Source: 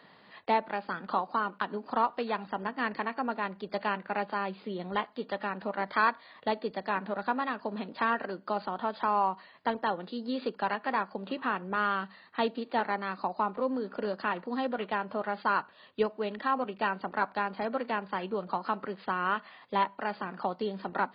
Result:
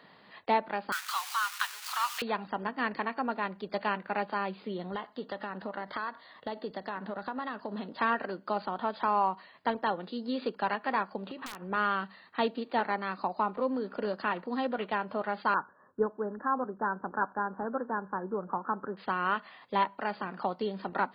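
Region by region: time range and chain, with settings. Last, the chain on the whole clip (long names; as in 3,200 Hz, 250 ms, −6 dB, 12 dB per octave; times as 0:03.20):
0:00.92–0:02.22: converter with a step at zero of −38 dBFS + high-pass filter 1,200 Hz 24 dB per octave + high-shelf EQ 2,400 Hz +11.5 dB
0:04.77–0:08.00: notch filter 2,400 Hz, Q 6.2 + downward compressor 5 to 1, threshold −31 dBFS
0:11.29–0:11.69: wrap-around overflow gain 19 dB + downward compressor 16 to 1, threshold −36 dBFS
0:15.54–0:18.97: Chebyshev low-pass filter 1,700 Hz, order 8 + parametric band 660 Hz −7 dB 0.22 octaves
whole clip: no processing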